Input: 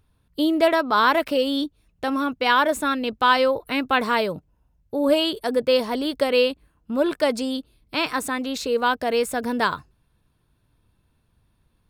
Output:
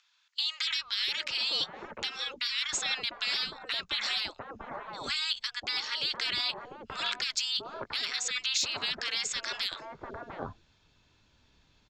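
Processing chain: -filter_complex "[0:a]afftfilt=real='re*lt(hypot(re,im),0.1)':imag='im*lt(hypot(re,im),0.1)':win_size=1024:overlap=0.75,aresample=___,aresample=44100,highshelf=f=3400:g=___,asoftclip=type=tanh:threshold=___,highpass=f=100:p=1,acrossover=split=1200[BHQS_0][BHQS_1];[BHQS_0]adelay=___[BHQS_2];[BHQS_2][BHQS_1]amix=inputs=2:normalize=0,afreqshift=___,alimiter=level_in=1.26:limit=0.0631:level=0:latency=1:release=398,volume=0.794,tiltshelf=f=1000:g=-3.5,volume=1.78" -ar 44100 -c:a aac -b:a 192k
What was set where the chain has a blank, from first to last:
16000, 6, 0.168, 700, -40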